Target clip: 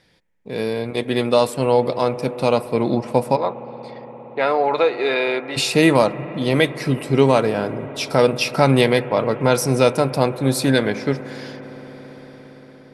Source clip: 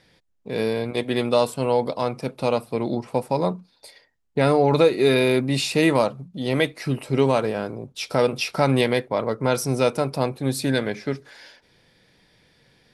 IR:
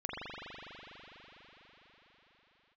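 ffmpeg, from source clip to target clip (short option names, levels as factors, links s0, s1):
-filter_complex "[0:a]dynaudnorm=f=230:g=9:m=3.76,asplit=3[s0][s1][s2];[s0]afade=t=out:st=3.35:d=0.02[s3];[s1]highpass=600,lowpass=2900,afade=t=in:st=3.35:d=0.02,afade=t=out:st=5.56:d=0.02[s4];[s2]afade=t=in:st=5.56:d=0.02[s5];[s3][s4][s5]amix=inputs=3:normalize=0,asplit=2[s6][s7];[1:a]atrim=start_sample=2205,asetrate=31752,aresample=44100[s8];[s7][s8]afir=irnorm=-1:irlink=0,volume=0.0944[s9];[s6][s9]amix=inputs=2:normalize=0,volume=0.891"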